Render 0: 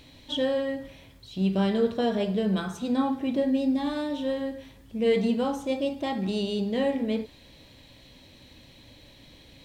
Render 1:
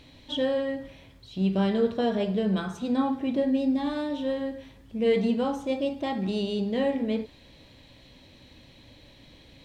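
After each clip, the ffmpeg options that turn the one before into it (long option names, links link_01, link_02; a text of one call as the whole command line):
ffmpeg -i in.wav -af "highshelf=frequency=7000:gain=-8.5" out.wav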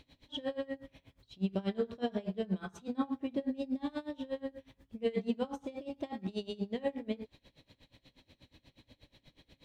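ffmpeg -i in.wav -af "aeval=exprs='val(0)*pow(10,-24*(0.5-0.5*cos(2*PI*8.3*n/s))/20)':channel_layout=same,volume=-4.5dB" out.wav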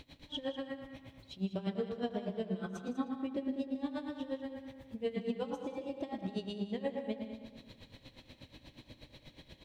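ffmpeg -i in.wav -filter_complex "[0:a]asplit=2[link_01][link_02];[link_02]adelay=113,lowpass=frequency=2600:poles=1,volume=-6dB,asplit=2[link_03][link_04];[link_04]adelay=113,lowpass=frequency=2600:poles=1,volume=0.49,asplit=2[link_05][link_06];[link_06]adelay=113,lowpass=frequency=2600:poles=1,volume=0.49,asplit=2[link_07][link_08];[link_08]adelay=113,lowpass=frequency=2600:poles=1,volume=0.49,asplit=2[link_09][link_10];[link_10]adelay=113,lowpass=frequency=2600:poles=1,volume=0.49,asplit=2[link_11][link_12];[link_12]adelay=113,lowpass=frequency=2600:poles=1,volume=0.49[link_13];[link_03][link_05][link_07][link_09][link_11][link_13]amix=inputs=6:normalize=0[link_14];[link_01][link_14]amix=inputs=2:normalize=0,acompressor=threshold=-56dB:ratio=1.5,asplit=2[link_15][link_16];[link_16]aecho=0:1:158|196:0.168|0.224[link_17];[link_15][link_17]amix=inputs=2:normalize=0,volume=6.5dB" out.wav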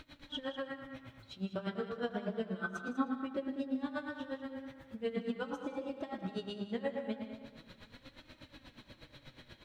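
ffmpeg -i in.wav -af "equalizer=frequency=1400:width=2.4:gain=13,flanger=delay=3.2:depth=5.6:regen=55:speed=0.36:shape=sinusoidal,volume=3dB" out.wav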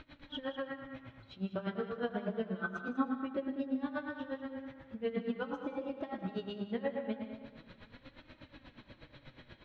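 ffmpeg -i in.wav -af "lowpass=3100,volume=1dB" out.wav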